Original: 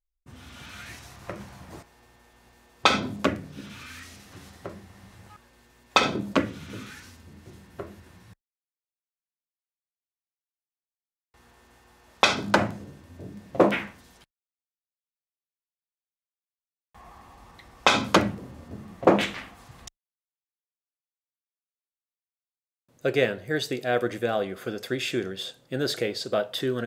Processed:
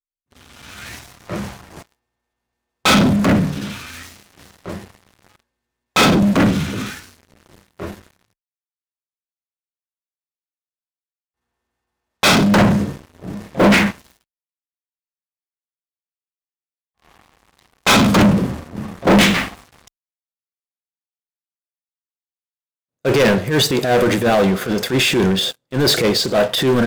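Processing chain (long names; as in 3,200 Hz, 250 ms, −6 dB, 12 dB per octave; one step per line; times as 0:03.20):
dynamic equaliser 180 Hz, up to +8 dB, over −46 dBFS, Q 2.1
transient designer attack −10 dB, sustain +5 dB
leveller curve on the samples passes 5
expander for the loud parts 1.5 to 1, over −32 dBFS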